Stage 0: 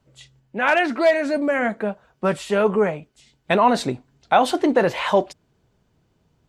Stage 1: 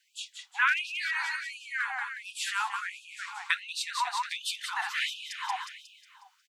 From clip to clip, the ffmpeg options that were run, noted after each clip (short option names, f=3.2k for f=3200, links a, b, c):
-af "aecho=1:1:181|362|543|724|905|1086:0.501|0.236|0.111|0.052|0.0245|0.0115,acompressor=threshold=-27dB:ratio=5,afftfilt=real='re*gte(b*sr/1024,720*pow(2500/720,0.5+0.5*sin(2*PI*1.4*pts/sr)))':imag='im*gte(b*sr/1024,720*pow(2500/720,0.5+0.5*sin(2*PI*1.4*pts/sr)))':win_size=1024:overlap=0.75,volume=7dB"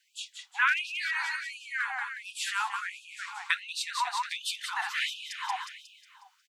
-af anull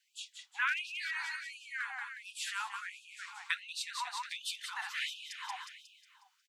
-af "highpass=f=1.3k:p=1,volume=-5dB"